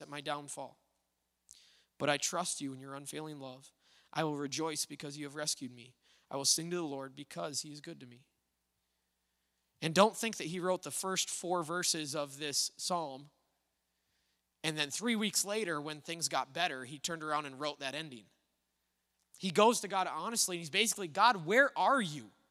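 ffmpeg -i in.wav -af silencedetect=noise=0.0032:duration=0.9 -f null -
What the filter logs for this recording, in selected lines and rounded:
silence_start: 8.17
silence_end: 9.82 | silence_duration: 1.65
silence_start: 13.25
silence_end: 14.64 | silence_duration: 1.39
silence_start: 18.21
silence_end: 19.34 | silence_duration: 1.14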